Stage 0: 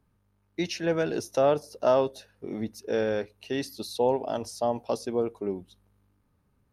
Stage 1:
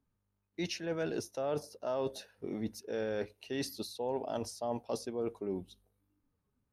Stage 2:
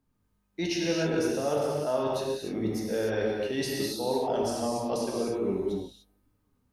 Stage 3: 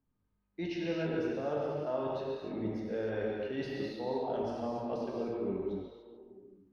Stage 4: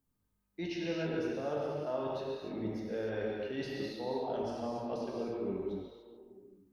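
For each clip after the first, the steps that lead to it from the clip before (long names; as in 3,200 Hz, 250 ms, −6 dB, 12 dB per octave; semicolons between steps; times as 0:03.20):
noise reduction from a noise print of the clip's start 12 dB; reversed playback; downward compressor 5 to 1, threshold −33 dBFS, peak gain reduction 14 dB; reversed playback
reverb whose tail is shaped and stops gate 320 ms flat, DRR −3.5 dB; level +3.5 dB
high-frequency loss of the air 290 metres; echo through a band-pass that steps 142 ms, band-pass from 3,000 Hz, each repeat −0.7 octaves, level −6 dB; level −5.5 dB
high-shelf EQ 5,400 Hz +10.5 dB; level −1.5 dB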